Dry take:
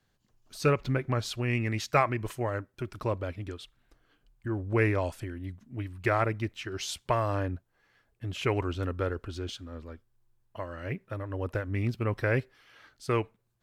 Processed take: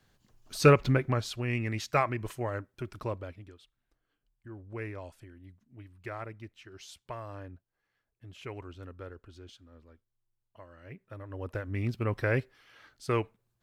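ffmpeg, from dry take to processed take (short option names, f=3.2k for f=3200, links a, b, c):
-af "volume=18dB,afade=t=out:st=0.7:d=0.57:silence=0.398107,afade=t=out:st=2.94:d=0.57:silence=0.281838,afade=t=in:st=10.86:d=1.16:silence=0.237137"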